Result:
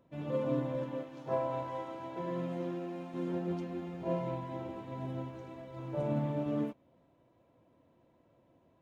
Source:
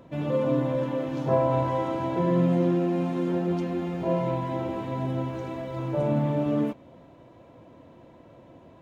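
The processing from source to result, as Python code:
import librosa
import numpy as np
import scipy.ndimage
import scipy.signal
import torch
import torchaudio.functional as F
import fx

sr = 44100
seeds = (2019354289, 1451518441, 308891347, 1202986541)

y = fx.low_shelf(x, sr, hz=290.0, db=-9.5, at=(1.03, 3.14))
y = fx.upward_expand(y, sr, threshold_db=-41.0, expansion=1.5)
y = y * librosa.db_to_amplitude(-7.0)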